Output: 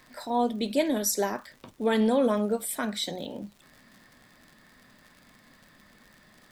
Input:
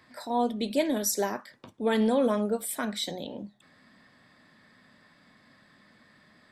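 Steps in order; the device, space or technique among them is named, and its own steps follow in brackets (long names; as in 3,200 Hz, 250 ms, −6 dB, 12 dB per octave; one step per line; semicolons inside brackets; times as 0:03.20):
vinyl LP (surface crackle 77 per second −43 dBFS; pink noise bed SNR 35 dB)
level +1 dB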